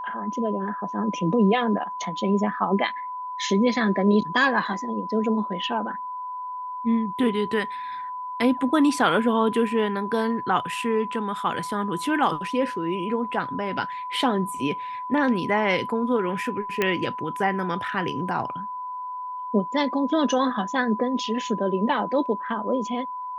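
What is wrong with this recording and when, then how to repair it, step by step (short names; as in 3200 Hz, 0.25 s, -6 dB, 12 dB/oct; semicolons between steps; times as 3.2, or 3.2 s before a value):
tone 1000 Hz -30 dBFS
16.82 pop -9 dBFS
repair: de-click; notch 1000 Hz, Q 30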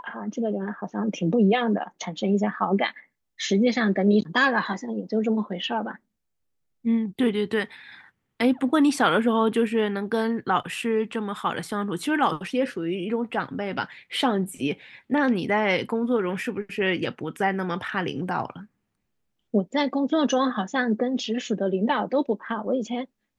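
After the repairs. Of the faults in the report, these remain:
none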